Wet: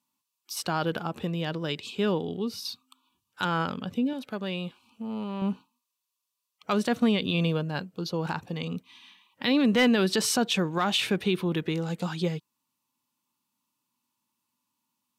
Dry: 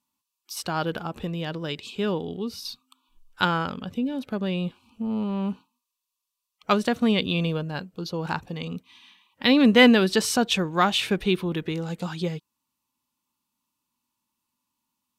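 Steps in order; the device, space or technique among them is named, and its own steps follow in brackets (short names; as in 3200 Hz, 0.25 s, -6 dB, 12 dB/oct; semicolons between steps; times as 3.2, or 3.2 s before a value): HPF 93 Hz 24 dB/oct; clipper into limiter (hard clip -8.5 dBFS, distortion -26 dB; limiter -15.5 dBFS, peak gain reduction 7 dB); 4.13–5.42 low shelf 490 Hz -8 dB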